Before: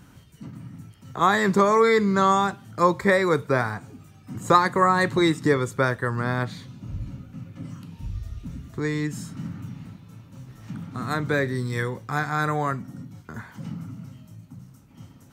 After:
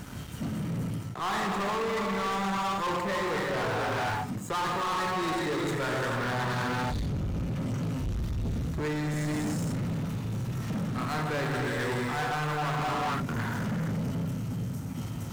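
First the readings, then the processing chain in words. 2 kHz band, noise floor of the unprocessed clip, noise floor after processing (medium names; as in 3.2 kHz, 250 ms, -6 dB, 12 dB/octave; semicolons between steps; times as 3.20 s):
-5.5 dB, -51 dBFS, -37 dBFS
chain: gated-style reverb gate 490 ms flat, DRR -0.5 dB; reverse; compression 16:1, threshold -29 dBFS, peak gain reduction 19.5 dB; reverse; dynamic bell 870 Hz, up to +6 dB, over -48 dBFS, Q 2.1; waveshaping leveller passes 5; trim -9 dB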